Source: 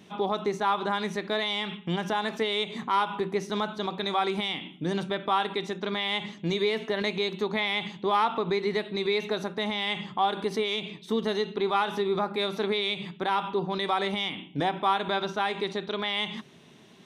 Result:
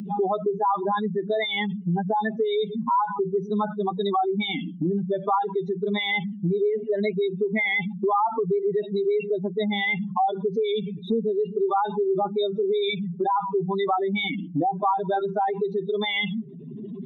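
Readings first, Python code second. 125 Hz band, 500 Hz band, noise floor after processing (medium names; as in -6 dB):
+5.5 dB, +5.0 dB, -37 dBFS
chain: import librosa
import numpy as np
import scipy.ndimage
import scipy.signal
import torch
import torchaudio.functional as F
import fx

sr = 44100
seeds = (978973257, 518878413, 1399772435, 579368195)

y = fx.spec_expand(x, sr, power=3.8)
y = fx.wow_flutter(y, sr, seeds[0], rate_hz=2.1, depth_cents=27.0)
y = fx.band_squash(y, sr, depth_pct=70)
y = y * librosa.db_to_amplitude(4.5)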